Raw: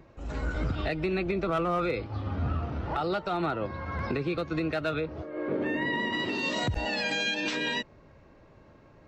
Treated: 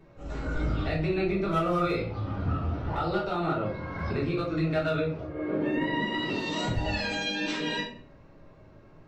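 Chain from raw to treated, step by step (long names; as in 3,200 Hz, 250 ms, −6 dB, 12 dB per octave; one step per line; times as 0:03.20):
0:01.45–0:02.01: high-shelf EQ 6,200 Hz +10 dB
rectangular room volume 57 cubic metres, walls mixed, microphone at 1.2 metres
level −6.5 dB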